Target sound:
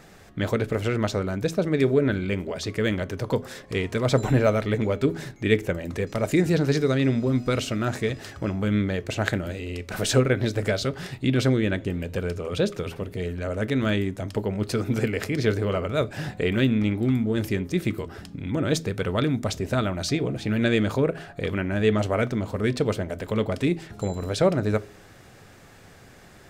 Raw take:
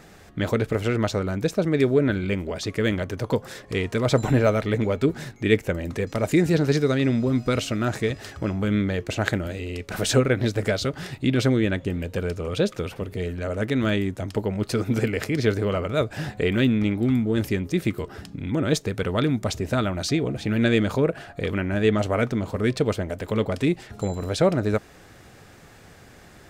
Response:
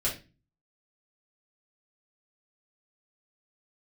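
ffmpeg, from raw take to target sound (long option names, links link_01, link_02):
-filter_complex "[0:a]bandreject=frequency=81.87:width_type=h:width=4,bandreject=frequency=163.74:width_type=h:width=4,bandreject=frequency=245.61:width_type=h:width=4,bandreject=frequency=327.48:width_type=h:width=4,bandreject=frequency=409.35:width_type=h:width=4,asplit=2[link_01][link_02];[1:a]atrim=start_sample=2205[link_03];[link_02][link_03]afir=irnorm=-1:irlink=0,volume=-23.5dB[link_04];[link_01][link_04]amix=inputs=2:normalize=0,volume=-1.5dB"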